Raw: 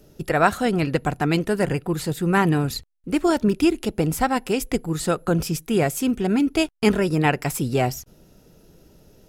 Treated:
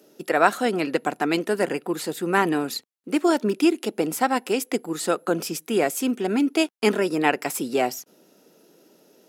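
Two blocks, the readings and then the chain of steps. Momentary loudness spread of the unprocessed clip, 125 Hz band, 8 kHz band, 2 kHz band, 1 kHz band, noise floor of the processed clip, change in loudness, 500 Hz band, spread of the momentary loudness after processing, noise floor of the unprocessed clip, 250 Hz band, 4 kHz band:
6 LU, -13.0 dB, 0.0 dB, 0.0 dB, 0.0 dB, -60 dBFS, -1.5 dB, 0.0 dB, 7 LU, -54 dBFS, -2.5 dB, 0.0 dB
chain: high-pass 240 Hz 24 dB/octave

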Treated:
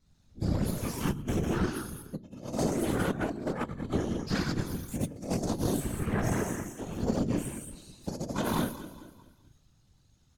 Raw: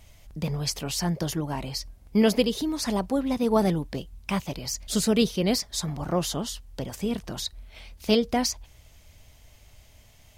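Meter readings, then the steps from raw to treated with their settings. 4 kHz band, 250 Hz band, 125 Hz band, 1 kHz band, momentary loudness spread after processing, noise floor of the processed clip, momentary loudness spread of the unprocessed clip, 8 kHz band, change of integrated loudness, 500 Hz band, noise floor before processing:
-12.5 dB, -5.0 dB, -0.5 dB, -4.5 dB, 11 LU, -65 dBFS, 12 LU, -8.5 dB, -5.5 dB, -7.0 dB, -55 dBFS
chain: frequency axis rescaled in octaves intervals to 129%; gated-style reverb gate 260 ms flat, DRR -2.5 dB; spectral noise reduction 9 dB; peaking EQ 830 Hz -8 dB 1 oct; chorus 0.37 Hz, delay 19 ms, depth 2.6 ms; feedback delay 210 ms, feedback 42%, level -14 dB; compressor with a negative ratio -30 dBFS, ratio -0.5; distance through air 50 m; Chebyshev shaper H 4 -14 dB, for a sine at -19 dBFS; whisper effect

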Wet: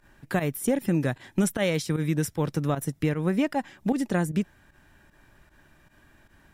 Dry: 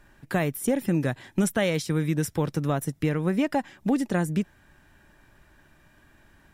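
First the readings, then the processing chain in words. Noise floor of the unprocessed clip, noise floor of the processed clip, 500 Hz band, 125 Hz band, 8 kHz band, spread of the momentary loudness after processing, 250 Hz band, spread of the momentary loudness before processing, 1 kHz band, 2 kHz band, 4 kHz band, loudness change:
-59 dBFS, -60 dBFS, -0.5 dB, -0.5 dB, 0.0 dB, 4 LU, -0.5 dB, 4 LU, -1.0 dB, -1.0 dB, -0.5 dB, -0.5 dB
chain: volume shaper 153 bpm, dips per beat 1, -14 dB, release 70 ms

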